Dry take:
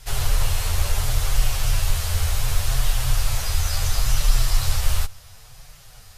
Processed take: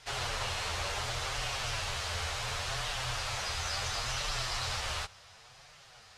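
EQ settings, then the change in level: high-pass 480 Hz 6 dB/octave; distance through air 100 m; -1.0 dB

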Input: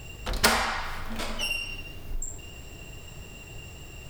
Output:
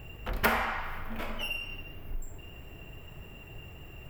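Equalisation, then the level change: high-order bell 6 kHz -14.5 dB; -3.0 dB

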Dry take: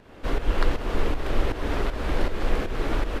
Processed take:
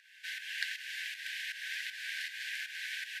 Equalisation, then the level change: brick-wall FIR high-pass 1.5 kHz; 0.0 dB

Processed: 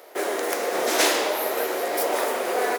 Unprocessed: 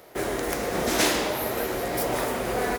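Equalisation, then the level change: ladder high-pass 310 Hz, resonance 20%; +7.5 dB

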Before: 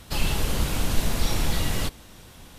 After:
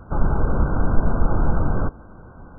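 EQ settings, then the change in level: brick-wall FIR low-pass 1.6 kHz; +6.0 dB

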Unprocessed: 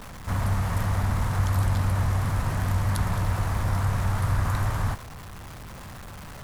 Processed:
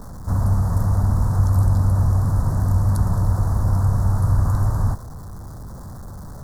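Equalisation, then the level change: Butterworth band-stop 2.6 kHz, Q 0.69; bass shelf 350 Hz +7.5 dB; 0.0 dB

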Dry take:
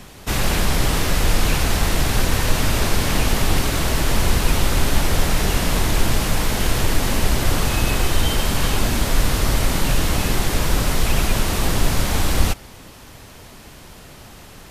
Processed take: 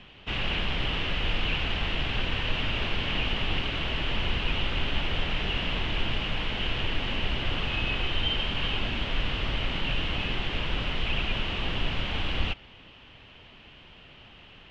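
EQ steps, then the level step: four-pole ladder low-pass 3.2 kHz, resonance 70%; 0.0 dB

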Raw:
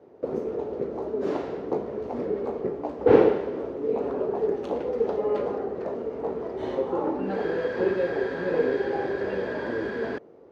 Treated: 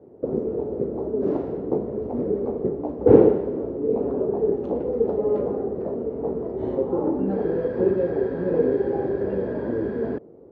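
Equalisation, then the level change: tilt shelf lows +10 dB, about 1.1 kHz; bass shelf 410 Hz +5 dB; -6.0 dB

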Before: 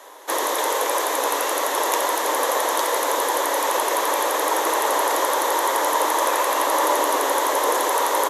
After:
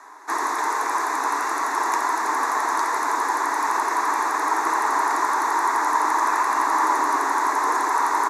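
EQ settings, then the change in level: distance through air 85 m; static phaser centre 1.3 kHz, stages 4; +3.5 dB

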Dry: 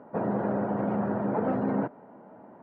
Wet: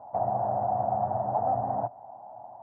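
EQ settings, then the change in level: FFT filter 120 Hz 0 dB, 170 Hz -17 dB, 470 Hz -19 dB, 740 Hz +12 dB, 1.7 kHz -26 dB, 2.8 kHz -30 dB; dynamic bell 890 Hz, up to -5 dB, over -42 dBFS, Q 2.8; peaking EQ 1.8 kHz +9 dB 0.26 oct; +3.0 dB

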